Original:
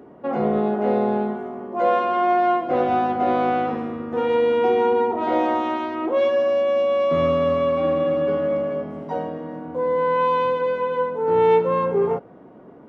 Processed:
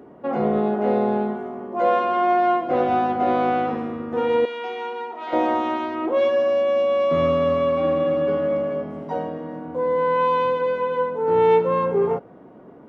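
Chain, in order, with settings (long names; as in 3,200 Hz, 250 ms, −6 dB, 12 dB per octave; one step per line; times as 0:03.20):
0:04.45–0:05.33: resonant band-pass 3,600 Hz, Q 0.58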